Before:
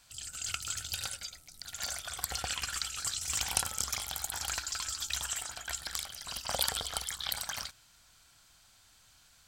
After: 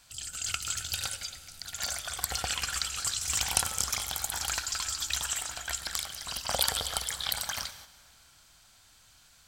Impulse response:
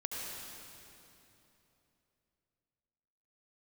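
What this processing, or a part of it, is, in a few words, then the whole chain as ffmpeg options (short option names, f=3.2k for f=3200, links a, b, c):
keyed gated reverb: -filter_complex "[0:a]asplit=3[a][b][c];[1:a]atrim=start_sample=2205[d];[b][d]afir=irnorm=-1:irlink=0[e];[c]apad=whole_len=417738[f];[e][f]sidechaingate=range=-7dB:threshold=-58dB:ratio=16:detection=peak,volume=-12dB[g];[a][g]amix=inputs=2:normalize=0,volume=2dB"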